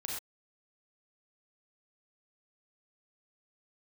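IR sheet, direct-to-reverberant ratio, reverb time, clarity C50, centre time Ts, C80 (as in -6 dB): -2.5 dB, no single decay rate, 0.5 dB, 51 ms, 4.0 dB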